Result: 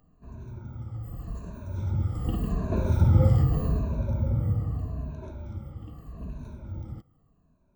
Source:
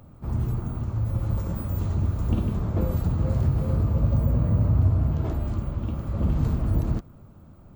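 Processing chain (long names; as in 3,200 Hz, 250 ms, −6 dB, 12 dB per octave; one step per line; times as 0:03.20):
rippled gain that drifts along the octave scale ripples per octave 1.5, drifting −0.82 Hz, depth 17 dB
source passing by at 0:03.12, 6 m/s, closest 2.9 metres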